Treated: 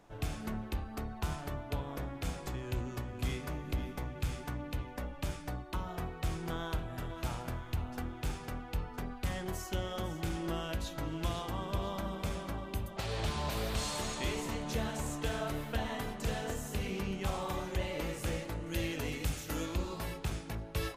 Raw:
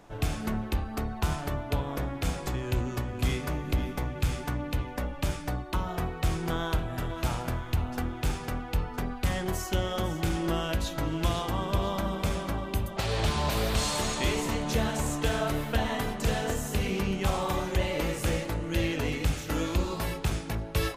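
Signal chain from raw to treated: 18.66–19.66 s: treble shelf 6 kHz +8 dB; trim -7.5 dB

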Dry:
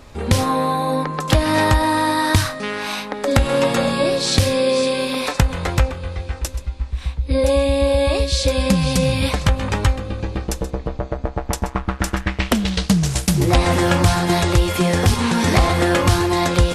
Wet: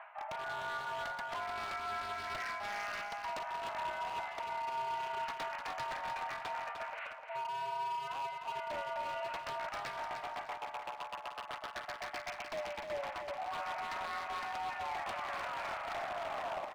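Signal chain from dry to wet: tape stop on the ending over 2.01 s; in parallel at -1 dB: gain riding within 4 dB 0.5 s; on the sum: mistuned SSB +400 Hz 250–2100 Hz; reverse; compression 10:1, threshold -33 dBFS, peak gain reduction 24.5 dB; reverse; wavefolder -31 dBFS; feedback delay 302 ms, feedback 30%, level -6.5 dB; trim -3.5 dB

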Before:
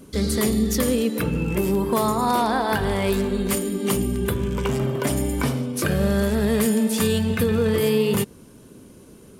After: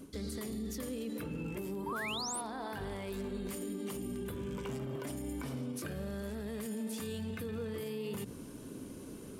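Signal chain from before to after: peaking EQ 280 Hz +6.5 dB 0.25 oct; hum notches 60/120/180/240 Hz; reverse; compression 6:1, threshold -32 dBFS, peak gain reduction 15.5 dB; reverse; peak limiter -30 dBFS, peak gain reduction 8 dB; painted sound rise, 1.86–2.41 s, 860–11000 Hz -38 dBFS; trim -1.5 dB

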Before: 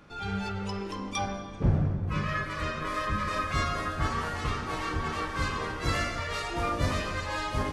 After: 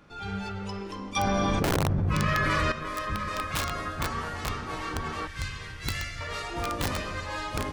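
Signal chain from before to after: 5.27–6.21 s: high-order bell 510 Hz -13 dB 3 oct; integer overflow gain 19.5 dB; 1.16–2.72 s: level flattener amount 100%; trim -1.5 dB

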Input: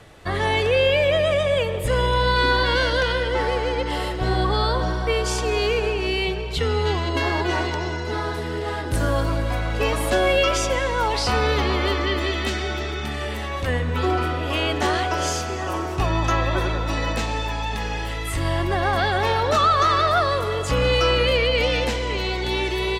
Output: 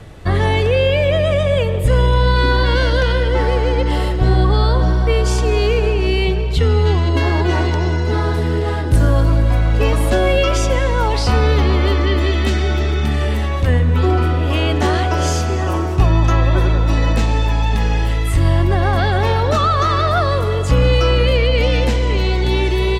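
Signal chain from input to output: bass shelf 300 Hz +11.5 dB; in parallel at -1.5 dB: gain riding 0.5 s; on the sum: trim -4.5 dB

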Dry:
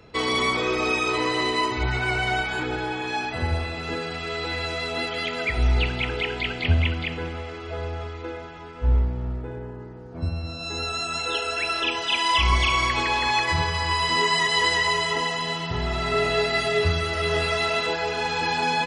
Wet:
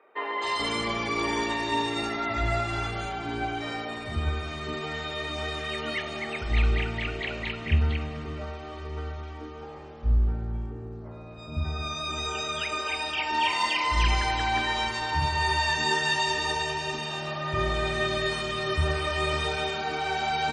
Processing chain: three bands offset in time mids, highs, lows 240/400 ms, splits 450/2500 Hz; speed mistake 48 kHz file played as 44.1 kHz; trim -2.5 dB

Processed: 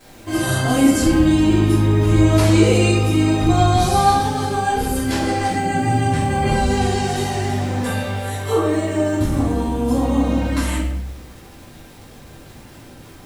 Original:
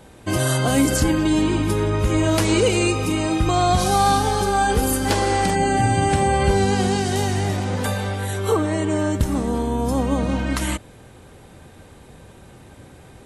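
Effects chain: 4.12–6.44 s: rotary cabinet horn 6.7 Hz; crackle 510 per s -33 dBFS; simulated room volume 190 m³, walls mixed, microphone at 3.1 m; trim -9 dB

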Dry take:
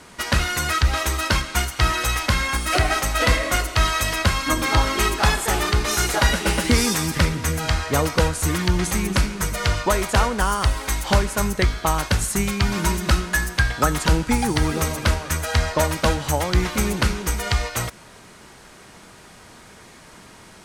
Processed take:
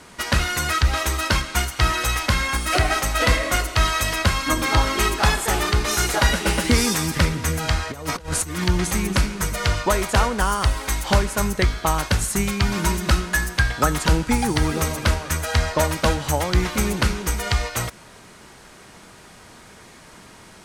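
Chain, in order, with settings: 7.91–8.64 s: compressor with a negative ratio -26 dBFS, ratio -0.5

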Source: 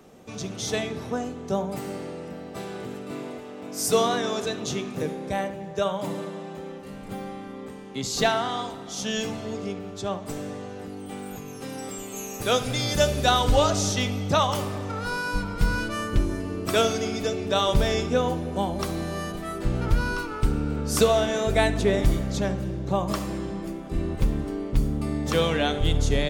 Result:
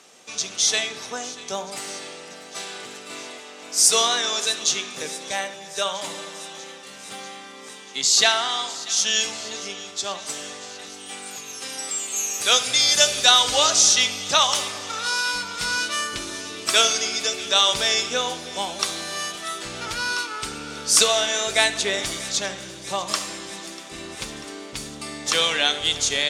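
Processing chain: frequency weighting ITU-R 468; on a send: feedback echo behind a high-pass 642 ms, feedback 72%, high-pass 1.8 kHz, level -17 dB; on the sum: trim +1.5 dB

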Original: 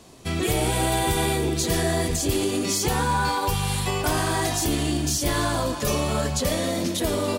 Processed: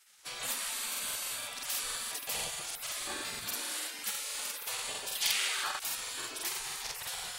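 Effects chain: spectral gate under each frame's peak -20 dB weak; 5.12–5.78 s: peaking EQ 4.8 kHz -> 1 kHz +11.5 dB 2.3 oct; crackling interface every 0.16 s, samples 2048, repeat, from 0.74 s; trim -3.5 dB

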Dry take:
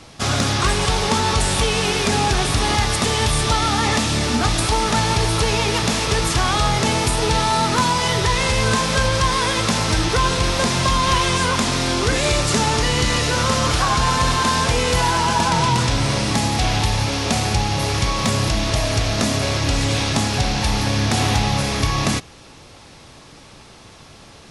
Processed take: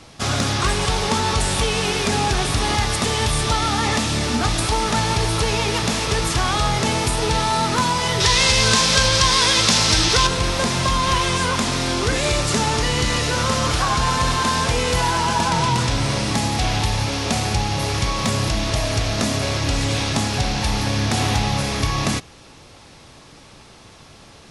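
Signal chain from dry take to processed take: 8.20–10.27 s: peaking EQ 4.9 kHz +10 dB 2.1 oct; trim -1.5 dB

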